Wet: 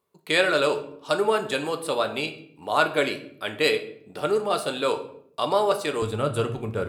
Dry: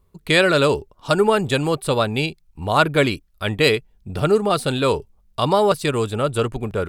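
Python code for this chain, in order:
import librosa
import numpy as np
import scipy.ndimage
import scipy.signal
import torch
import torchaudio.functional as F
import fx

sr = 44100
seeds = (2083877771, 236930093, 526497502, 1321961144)

y = fx.highpass(x, sr, hz=fx.steps((0.0, 320.0), (6.02, 78.0)), slope=12)
y = fx.room_shoebox(y, sr, seeds[0], volume_m3=110.0, walls='mixed', distance_m=0.39)
y = F.gain(torch.from_numpy(y), -5.5).numpy()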